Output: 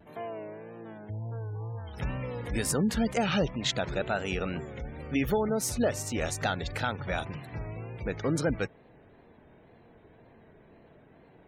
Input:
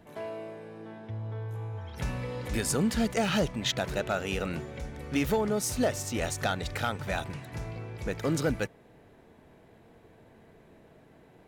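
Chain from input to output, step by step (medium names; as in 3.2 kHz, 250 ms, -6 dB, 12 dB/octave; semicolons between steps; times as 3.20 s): spectral gate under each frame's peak -30 dB strong; wow and flutter 78 cents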